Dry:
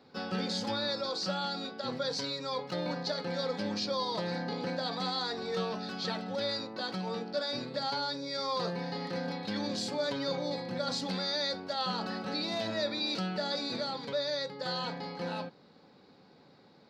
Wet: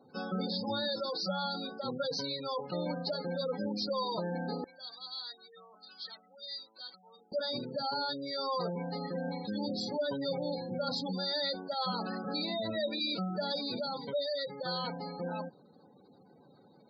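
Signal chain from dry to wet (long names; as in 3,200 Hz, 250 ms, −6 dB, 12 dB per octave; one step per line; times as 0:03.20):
gate on every frequency bin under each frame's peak −15 dB strong
0:04.64–0:07.32: first difference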